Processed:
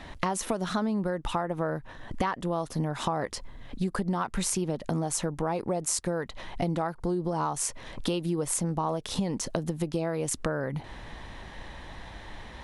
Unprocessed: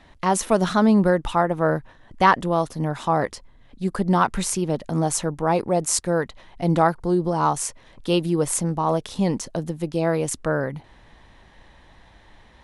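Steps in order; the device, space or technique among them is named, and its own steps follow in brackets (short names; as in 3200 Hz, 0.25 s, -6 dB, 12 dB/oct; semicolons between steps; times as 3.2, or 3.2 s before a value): serial compression, peaks first (compressor, threshold -29 dBFS, peak gain reduction 17.5 dB; compressor 2:1, threshold -37 dBFS, peak gain reduction 7 dB); gain +8 dB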